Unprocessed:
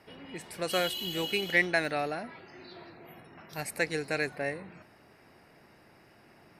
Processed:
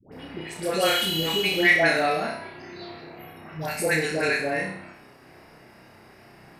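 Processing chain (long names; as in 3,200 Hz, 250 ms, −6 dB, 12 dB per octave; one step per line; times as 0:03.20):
all-pass dispersion highs, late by 121 ms, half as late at 760 Hz
on a send: flutter between parallel walls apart 5.4 metres, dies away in 0.54 s
on the sum: level +5.5 dB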